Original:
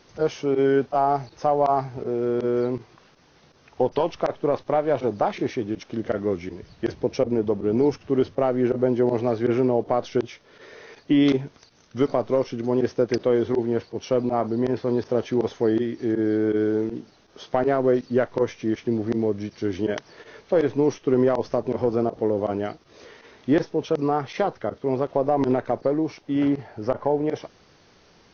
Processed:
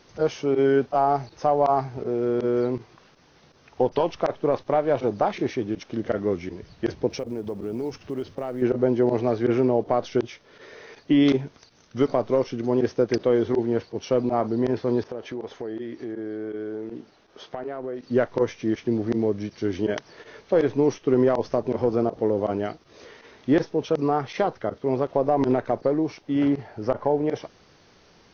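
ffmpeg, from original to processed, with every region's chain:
ffmpeg -i in.wav -filter_complex "[0:a]asettb=1/sr,asplit=3[link_01][link_02][link_03];[link_01]atrim=end=7.104[link_04];[link_02]atrim=start=7.1:end=8.62,asetpts=PTS-STARTPTS,afade=type=in:duration=0.004:curve=qsin,afade=type=out:start_time=1.516:duration=0.004:curve=qsin,highshelf=frequency=2600:gain=4,acompressor=threshold=-30dB:ratio=2.5:attack=3.2:release=140:knee=1:detection=peak,acrusher=bits=9:mode=log:mix=0:aa=0.000001[link_05];[link_03]atrim=start=8.616[link_06];[link_04][link_05]acrossfade=duration=0.004:curve1=hsin:curve2=qsin[link_07];[link_07][link_06]acrossfade=duration=0.004:curve1=qsin:curve2=hsin,asettb=1/sr,asplit=3[link_08][link_09][link_10];[link_08]atrim=end=15.034[link_11];[link_09]atrim=start=15.03:end=18.07,asetpts=PTS-STARTPTS,afade=type=in:duration=0.004:curve=qsin,afade=type=out:start_time=3.036:duration=0.004:curve=qsin,bass=frequency=250:gain=-6,treble=frequency=4000:gain=-6,acompressor=threshold=-30dB:ratio=4:attack=3.2:release=140:knee=1:detection=peak[link_12];[link_10]atrim=start=18.066[link_13];[link_11][link_12]acrossfade=duration=0.004:curve1=hsin:curve2=qsin[link_14];[link_14][link_13]acrossfade=duration=0.004:curve1=qsin:curve2=hsin" out.wav

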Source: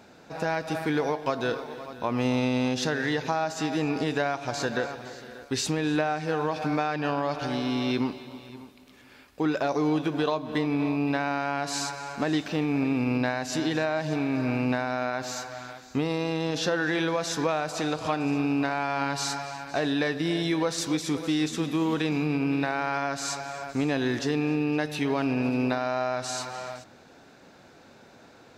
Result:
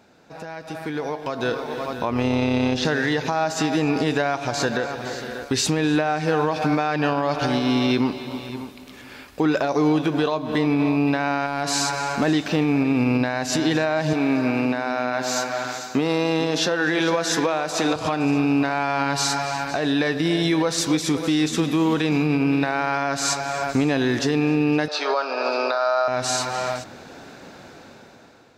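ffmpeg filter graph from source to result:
ffmpeg -i in.wav -filter_complex "[0:a]asettb=1/sr,asplit=3[link_01][link_02][link_03];[link_01]atrim=end=2.104[link_04];[link_02]atrim=start=2.1:end=2.85,asetpts=PTS-STARTPTS,afade=type=in:duration=0.004:curve=qsin,afade=type=out:start_time=0.746:duration=0.004:curve=qsin,acrossover=split=5000[link_05][link_06];[link_06]acompressor=threshold=-51dB:ratio=4:attack=1:release=60[link_07];[link_05][link_07]amix=inputs=2:normalize=0,tremolo=f=160:d=0.462[link_08];[link_03]atrim=start=2.846[link_09];[link_04][link_08]acrossfade=duration=0.004:curve1=hsin:curve2=qsin[link_10];[link_10][link_09]acrossfade=duration=0.004:curve1=qsin:curve2=hsin,asettb=1/sr,asplit=3[link_11][link_12][link_13];[link_11]atrim=end=11.464[link_14];[link_12]atrim=start=11.46:end=12.28,asetpts=PTS-STARTPTS,afade=type=in:duration=0.004:curve=qsin,afade=type=out:start_time=0.816:duration=0.004:curve=qsin,volume=19.5dB,asoftclip=hard,volume=-19.5dB,acompressor=threshold=-31dB:ratio=2:attack=3.2:release=140:knee=1:detection=peak[link_15];[link_13]atrim=start=12.276[link_16];[link_14][link_15]acrossfade=duration=0.004:curve1=hsin:curve2=qsin[link_17];[link_17][link_16]acrossfade=duration=0.004:curve1=qsin:curve2=hsin,asettb=1/sr,asplit=3[link_18][link_19][link_20];[link_18]atrim=end=14.134[link_21];[link_19]atrim=start=14.13:end=17.96,asetpts=PTS-STARTPTS,afade=type=in:duration=0.004:curve=qsin,afade=type=out:start_time=3.826:duration=0.004:curve=qsin,highpass=180,aecho=1:1:444:0.251,atrim=end_sample=168903[link_22];[link_20]atrim=start=17.956[link_23];[link_21][link_22]acrossfade=duration=0.004:curve1=hsin:curve2=qsin[link_24];[link_24][link_23]acrossfade=duration=0.004:curve1=qsin:curve2=hsin,asettb=1/sr,asplit=3[link_25][link_26][link_27];[link_25]atrim=end=24.884[link_28];[link_26]atrim=start=24.88:end=26.08,asetpts=PTS-STARTPTS,afade=type=in:duration=0.004:curve=qsin,afade=type=out:start_time=1.196:duration=0.004:curve=qsin,highpass=frequency=490:width=0.5412,highpass=frequency=490:width=1.3066,equalizer=frequency=580:width_type=q:width=4:gain=5,equalizer=frequency=1300:width_type=q:width=4:gain=10,equalizer=frequency=2000:width_type=q:width=4:gain=-8,equalizer=frequency=2900:width_type=q:width=4:gain=-7,equalizer=frequency=4600:width_type=q:width=4:gain=9,lowpass=frequency=6100:width=0.5412,lowpass=frequency=6100:width=1.3066,asplit=2[link_29][link_30];[link_30]adelay=27,volume=-10.5dB[link_31];[link_29][link_31]amix=inputs=2:normalize=0,atrim=end_sample=52920[link_32];[link_27]atrim=start=26.076[link_33];[link_28][link_32]acrossfade=duration=0.004:curve1=hsin:curve2=qsin[link_34];[link_34][link_33]acrossfade=duration=0.004:curve1=qsin:curve2=hsin,alimiter=limit=-23dB:level=0:latency=1:release=325,dynaudnorm=framelen=470:gausssize=5:maxgain=14.5dB,volume=-3dB" out.wav

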